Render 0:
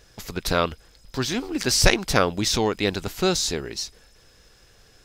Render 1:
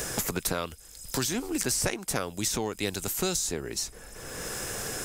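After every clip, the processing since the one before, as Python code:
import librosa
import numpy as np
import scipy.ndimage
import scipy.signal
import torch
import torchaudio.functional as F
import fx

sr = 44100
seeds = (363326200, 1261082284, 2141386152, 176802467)

y = fx.high_shelf_res(x, sr, hz=6100.0, db=11.0, q=1.5)
y = fx.band_squash(y, sr, depth_pct=100)
y = y * librosa.db_to_amplitude(-8.0)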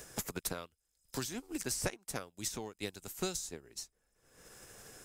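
y = fx.upward_expand(x, sr, threshold_db=-43.0, expansion=2.5)
y = y * librosa.db_to_amplitude(-5.0)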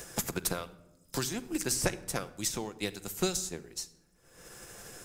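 y = fx.room_shoebox(x, sr, seeds[0], volume_m3=3500.0, walls='furnished', distance_m=0.82)
y = y * librosa.db_to_amplitude(5.5)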